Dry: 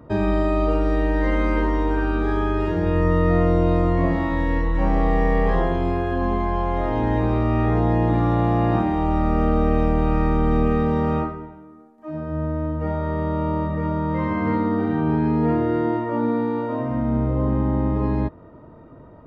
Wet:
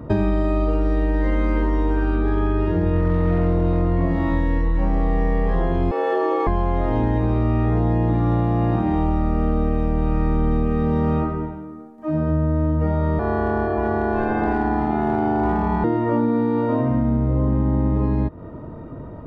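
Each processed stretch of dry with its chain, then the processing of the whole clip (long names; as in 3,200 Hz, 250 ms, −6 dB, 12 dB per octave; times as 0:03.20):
0:02.14–0:04.02: hard clipping −13.5 dBFS + high-frequency loss of the air 100 metres
0:05.91–0:06.47: high-pass filter 210 Hz 24 dB per octave + frequency shifter +110 Hz
0:13.19–0:15.84: parametric band 2,000 Hz −11.5 dB 0.23 octaves + hard clipping −14.5 dBFS + ring modulation 530 Hz
whole clip: low-shelf EQ 370 Hz +6.5 dB; downward compressor, threshold −22 dBFS; level +5.5 dB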